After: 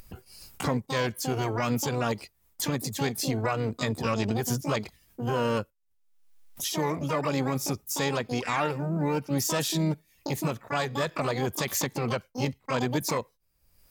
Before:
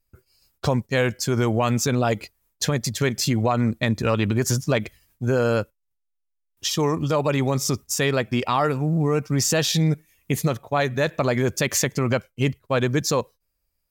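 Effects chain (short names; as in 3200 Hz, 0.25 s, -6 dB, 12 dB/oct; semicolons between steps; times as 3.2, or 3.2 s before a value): harmoniser +3 st -15 dB, +12 st -4 dB; upward compressor, threshold -21 dBFS; gain -8 dB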